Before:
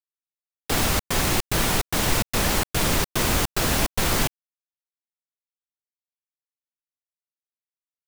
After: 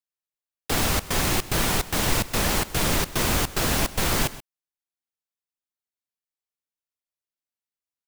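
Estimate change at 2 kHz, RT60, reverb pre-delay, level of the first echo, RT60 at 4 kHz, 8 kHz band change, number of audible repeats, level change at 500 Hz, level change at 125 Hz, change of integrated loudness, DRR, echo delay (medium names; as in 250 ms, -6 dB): -1.0 dB, no reverb, no reverb, -17.0 dB, no reverb, -1.0 dB, 1, -1.0 dB, -1.0 dB, -1.0 dB, no reverb, 129 ms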